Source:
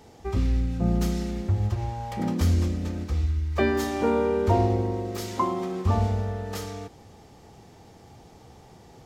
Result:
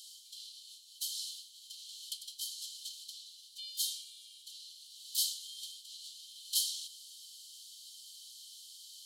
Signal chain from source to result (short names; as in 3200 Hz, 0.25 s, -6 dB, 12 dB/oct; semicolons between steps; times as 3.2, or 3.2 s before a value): reverse; compressor 6:1, threshold -31 dBFS, peak gain reduction 14 dB; reverse; rippled Chebyshev high-pass 3000 Hz, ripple 9 dB; gain +17 dB